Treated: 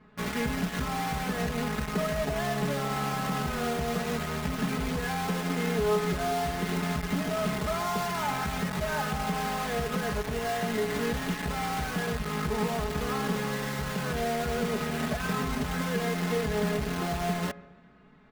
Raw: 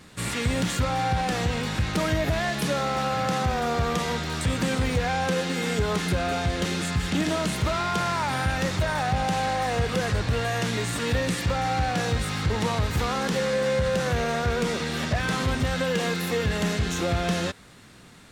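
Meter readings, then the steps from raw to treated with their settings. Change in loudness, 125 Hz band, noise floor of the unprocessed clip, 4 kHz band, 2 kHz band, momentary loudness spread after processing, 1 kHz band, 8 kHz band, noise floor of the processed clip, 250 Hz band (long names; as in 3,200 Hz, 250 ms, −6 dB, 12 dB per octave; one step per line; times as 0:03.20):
−4.5 dB, −6.5 dB, −49 dBFS, −7.0 dB, −4.5 dB, 2 LU, −4.0 dB, −5.5 dB, −47 dBFS, −2.5 dB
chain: low-pass filter 1,700 Hz 12 dB per octave
tuned comb filter 140 Hz, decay 0.68 s, harmonics all, mix 70%
on a send: repeating echo 138 ms, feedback 53%, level −18.5 dB
on the sum: downward compressor 4 to 1, threshold −36 dBFS, peak gain reduction 8 dB
in parallel at −6.5 dB: log-companded quantiser 2 bits
on the sum: comb filter 4.7 ms, depth 95%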